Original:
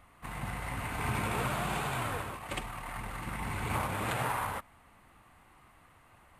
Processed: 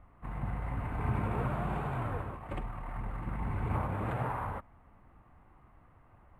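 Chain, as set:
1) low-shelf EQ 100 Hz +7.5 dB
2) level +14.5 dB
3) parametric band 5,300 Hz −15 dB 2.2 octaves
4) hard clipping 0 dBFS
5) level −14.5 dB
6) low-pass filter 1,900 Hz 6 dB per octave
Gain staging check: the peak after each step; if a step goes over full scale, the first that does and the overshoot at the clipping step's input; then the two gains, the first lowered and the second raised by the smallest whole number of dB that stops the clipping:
−19.0, −4.5, −5.5, −5.5, −20.0, −20.5 dBFS
no step passes full scale

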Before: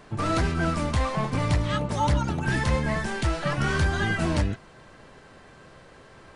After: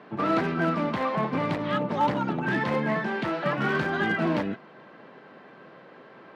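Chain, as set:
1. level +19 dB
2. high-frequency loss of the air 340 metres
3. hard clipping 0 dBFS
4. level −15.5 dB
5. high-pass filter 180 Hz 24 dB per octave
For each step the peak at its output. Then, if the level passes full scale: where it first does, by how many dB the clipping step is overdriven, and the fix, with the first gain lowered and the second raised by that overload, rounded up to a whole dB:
+5.5, +5.0, 0.0, −15.5, −13.0 dBFS
step 1, 5.0 dB
step 1 +14 dB, step 4 −10.5 dB

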